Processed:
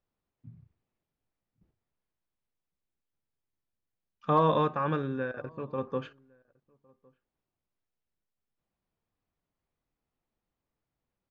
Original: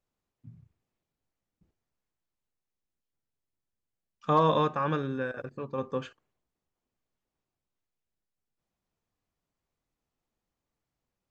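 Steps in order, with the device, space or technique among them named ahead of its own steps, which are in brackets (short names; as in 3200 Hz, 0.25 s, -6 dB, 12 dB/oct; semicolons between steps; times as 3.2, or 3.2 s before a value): shout across a valley (air absorption 170 m; outdoor echo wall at 190 m, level -29 dB)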